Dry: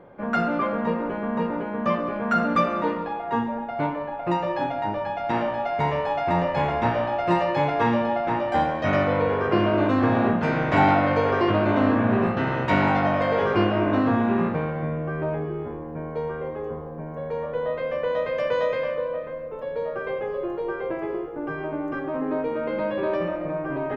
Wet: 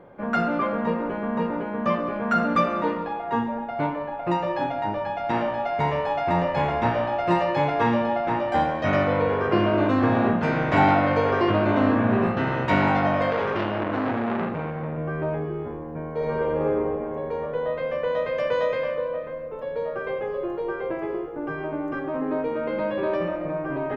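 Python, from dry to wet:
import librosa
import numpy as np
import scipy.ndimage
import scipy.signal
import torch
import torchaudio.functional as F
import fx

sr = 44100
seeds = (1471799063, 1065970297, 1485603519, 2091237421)

y = fx.transformer_sat(x, sr, knee_hz=1200.0, at=(13.3, 14.98))
y = fx.reverb_throw(y, sr, start_s=16.15, length_s=0.59, rt60_s=2.6, drr_db=-6.0)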